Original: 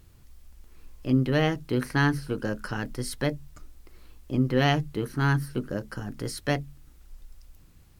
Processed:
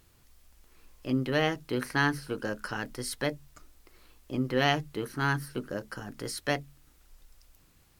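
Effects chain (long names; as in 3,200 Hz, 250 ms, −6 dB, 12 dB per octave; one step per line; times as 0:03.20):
low-shelf EQ 260 Hz −10.5 dB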